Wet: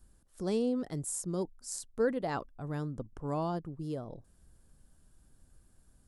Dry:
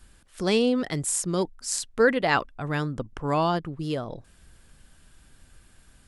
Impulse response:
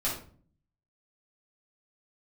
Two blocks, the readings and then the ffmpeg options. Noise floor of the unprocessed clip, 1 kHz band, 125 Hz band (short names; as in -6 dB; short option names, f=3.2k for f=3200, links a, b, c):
-57 dBFS, -12.0 dB, -7.0 dB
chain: -af "equalizer=f=2.5k:w=0.62:g=-14.5,volume=-7dB"